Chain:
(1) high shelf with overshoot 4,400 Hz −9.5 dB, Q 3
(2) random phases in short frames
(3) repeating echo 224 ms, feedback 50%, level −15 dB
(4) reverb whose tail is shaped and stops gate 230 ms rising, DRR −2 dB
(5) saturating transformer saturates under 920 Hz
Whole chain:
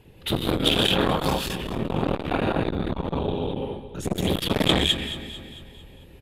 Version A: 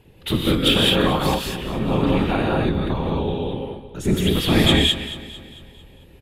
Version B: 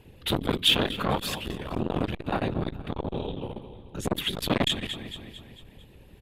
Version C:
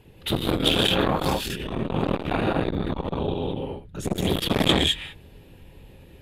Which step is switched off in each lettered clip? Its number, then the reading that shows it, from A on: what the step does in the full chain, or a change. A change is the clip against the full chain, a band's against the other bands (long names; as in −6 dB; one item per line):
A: 5, change in crest factor −3.5 dB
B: 4, change in momentary loudness spread +4 LU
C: 3, change in momentary loudness spread −3 LU